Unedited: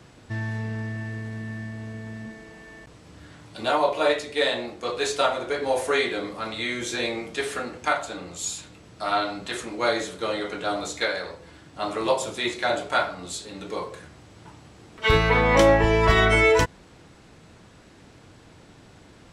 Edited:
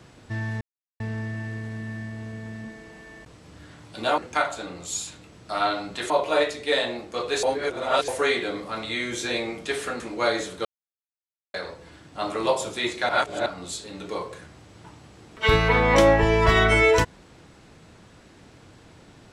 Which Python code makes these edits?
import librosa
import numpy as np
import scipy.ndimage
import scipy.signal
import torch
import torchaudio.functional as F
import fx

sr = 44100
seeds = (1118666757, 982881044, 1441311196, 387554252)

y = fx.edit(x, sr, fx.insert_silence(at_s=0.61, length_s=0.39),
    fx.reverse_span(start_s=5.12, length_s=0.65),
    fx.move(start_s=7.69, length_s=1.92, to_s=3.79),
    fx.silence(start_s=10.26, length_s=0.89),
    fx.reverse_span(start_s=12.7, length_s=0.37), tone=tone)